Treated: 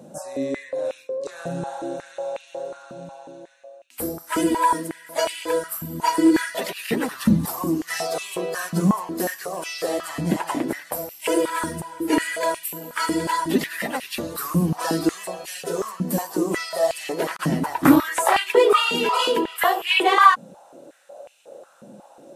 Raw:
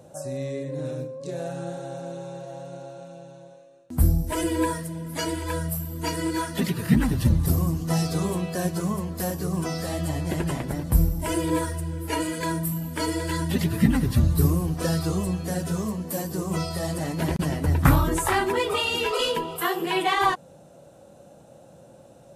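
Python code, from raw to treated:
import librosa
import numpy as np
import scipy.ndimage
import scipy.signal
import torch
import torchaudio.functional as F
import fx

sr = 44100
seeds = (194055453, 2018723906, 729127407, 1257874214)

y = fx.filter_held_highpass(x, sr, hz=5.5, low_hz=210.0, high_hz=2600.0)
y = y * librosa.db_to_amplitude(2.0)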